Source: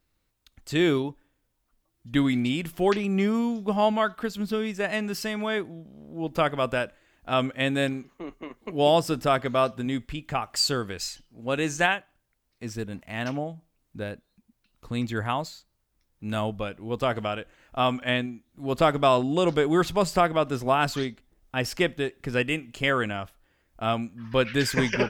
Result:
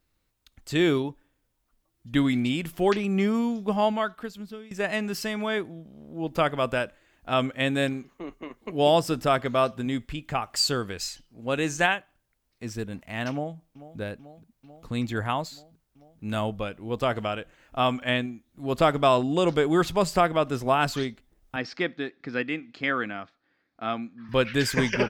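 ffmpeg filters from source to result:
-filter_complex "[0:a]asplit=2[a][b];[b]afade=t=in:st=13.31:d=0.01,afade=t=out:st=13.99:d=0.01,aecho=0:1:440|880|1320|1760|2200|2640|3080|3520|3960|4400|4840|5280:0.16788|0.134304|0.107443|0.0859548|0.0687638|0.0550111|0.0440088|0.0352071|0.0281657|0.0225325|0.018026|0.0144208[c];[a][c]amix=inputs=2:normalize=0,asettb=1/sr,asplit=3[d][e][f];[d]atrim=end=21.564[g];[e]atrim=start=21.56:end=24.29,asetpts=PTS-STARTPTS,afade=t=in:d=0.004:c=qsin,afade=t=out:st=2.726:d=0.004:c=qsin,highpass=230,equalizer=f=280:t=q:w=4:g=3,equalizer=f=400:t=q:w=4:g=-6,equalizer=f=590:t=q:w=4:g=-7,equalizer=f=940:t=q:w=4:g=-6,equalizer=f=2.9k:t=q:w=4:g=-10,equalizer=f=4.3k:t=q:w=4:g=3,lowpass=f=4.5k:w=0.5412,lowpass=f=4.5k:w=1.3066[h];[f]atrim=start=24.286[i];[g][h]acrossfade=d=0.004:c1=hsin:c2=qsin[j];[j][i]acrossfade=d=0.004:c1=qsin:c2=hsin,asplit=2[k][l];[k]atrim=end=4.71,asetpts=PTS-STARTPTS,afade=t=out:st=3.71:d=1:silence=0.0891251[m];[l]atrim=start=4.71,asetpts=PTS-STARTPTS,afade=t=in:d=0.004:c=hsin:silence=0.0891251[n];[m][n]concat=n=2:v=0:a=1"

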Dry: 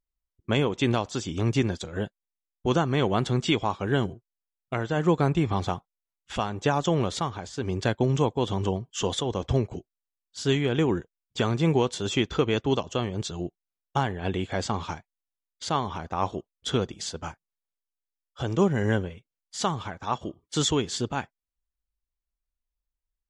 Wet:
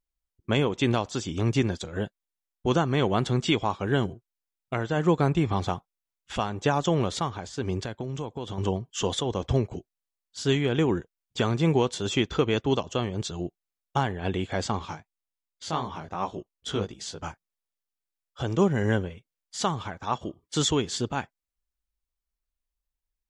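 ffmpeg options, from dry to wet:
-filter_complex "[0:a]asettb=1/sr,asplit=3[a][b][c];[a]atrim=end=7.824[d];[b]atrim=start=7.82:end=8.58,asetpts=PTS-STARTPTS,afade=t=in:d=0.004:c=qsin,afade=t=out:st=0.756:d=0.004:c=qsin,acompressor=threshold=-32dB:ratio=3:attack=3.2:release=140:knee=1:detection=peak[e];[c]atrim=start=8.576[f];[d][e]acrossfade=d=0.004:c1=hsin:c2=qsin[g];[g][f]acrossfade=d=0.004:c1=qsin:c2=hsin,asettb=1/sr,asplit=3[h][i][j];[h]atrim=end=14.794[k];[i]atrim=start=14.79:end=17.2,asetpts=PTS-STARTPTS,afade=t=in:d=0.004:c=qsin,afade=t=out:st=2.406:d=0.004:c=qsin,flanger=delay=15:depth=4.7:speed=2.7[l];[j]atrim=start=17.196[m];[k][l]acrossfade=d=0.004:c1=hsin:c2=qsin[n];[n][m]acrossfade=d=0.004:c1=qsin:c2=hsin"

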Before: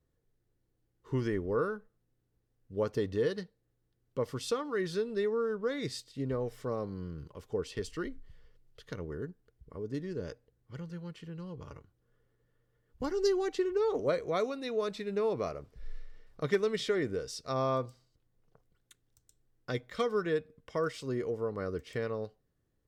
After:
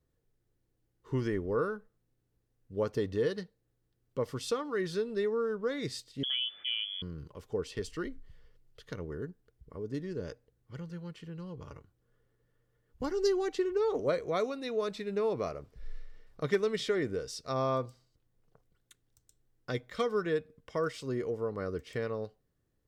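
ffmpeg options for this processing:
-filter_complex "[0:a]asettb=1/sr,asplit=3[a][b][c];[a]atrim=end=6.234[d];[b]atrim=start=6.23:end=7.02,asetpts=PTS-STARTPTS,afade=t=in:d=0.004:c=qsin,afade=t=out:st=0.786:d=0.004:c=qsin,lowpass=f=3k:t=q:w=0.5098,lowpass=f=3k:t=q:w=0.6013,lowpass=f=3k:t=q:w=0.9,lowpass=f=3k:t=q:w=2.563,afreqshift=-3500[e];[c]atrim=start=7.016[f];[d][e]acrossfade=d=0.004:c1=hsin:c2=qsin[g];[g][f]acrossfade=d=0.004:c1=qsin:c2=hsin"

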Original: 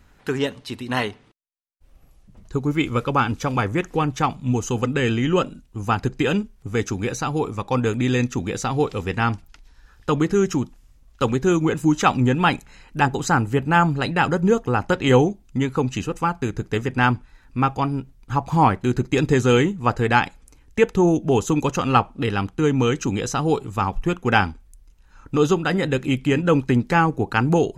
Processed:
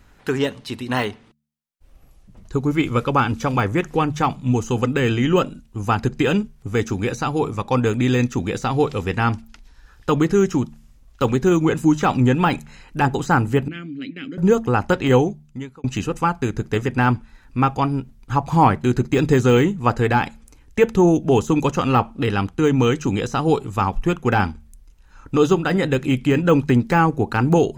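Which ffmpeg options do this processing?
-filter_complex "[0:a]asettb=1/sr,asplit=3[a][b][c];[a]atrim=end=13.684[d];[b]atrim=start=13.68:end=14.38,asetpts=PTS-STARTPTS,afade=t=in:d=0.004:c=qsin,afade=t=out:st=0.696:d=0.004:c=qsin,asplit=3[e][f][g];[e]bandpass=f=270:t=q:w=8,volume=0dB[h];[f]bandpass=f=2.29k:t=q:w=8,volume=-6dB[i];[g]bandpass=f=3.01k:t=q:w=8,volume=-9dB[j];[h][i][j]amix=inputs=3:normalize=0[k];[c]atrim=start=14.376[l];[d][k]acrossfade=d=0.004:c1=hsin:c2=qsin[m];[m][l]acrossfade=d=0.004:c1=qsin:c2=hsin,asplit=2[n][o];[n]atrim=end=15.84,asetpts=PTS-STARTPTS,afade=t=out:st=14.95:d=0.89[p];[o]atrim=start=15.84,asetpts=PTS-STARTPTS,afade=t=in:d=0.004:c=hsin[q];[p][q]concat=n=2:v=0:a=1,deesser=0.75,bandreject=f=74.9:t=h:w=4,bandreject=f=149.8:t=h:w=4,bandreject=f=224.7:t=h:w=4,volume=2.5dB"

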